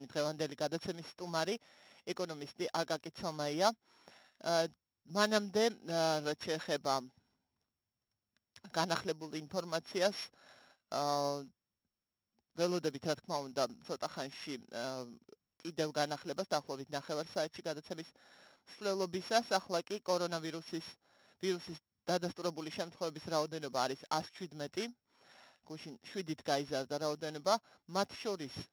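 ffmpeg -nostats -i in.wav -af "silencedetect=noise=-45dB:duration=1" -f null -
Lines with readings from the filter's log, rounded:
silence_start: 7.06
silence_end: 8.56 | silence_duration: 1.50
silence_start: 11.44
silence_end: 12.57 | silence_duration: 1.13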